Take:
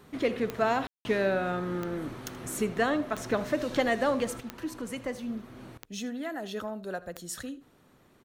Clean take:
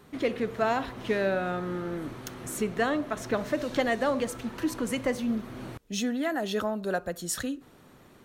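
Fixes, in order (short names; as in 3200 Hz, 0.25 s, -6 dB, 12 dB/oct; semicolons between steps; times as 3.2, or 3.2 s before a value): de-click; room tone fill 0.87–1.05; inverse comb 79 ms -18.5 dB; gain 0 dB, from 4.4 s +6.5 dB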